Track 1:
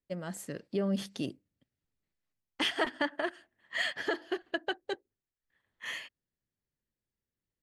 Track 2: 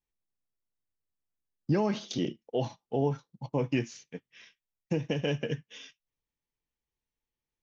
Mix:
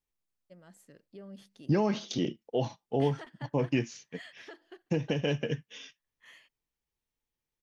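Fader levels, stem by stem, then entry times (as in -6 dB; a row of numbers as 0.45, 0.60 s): -16.5, +0.5 dB; 0.40, 0.00 s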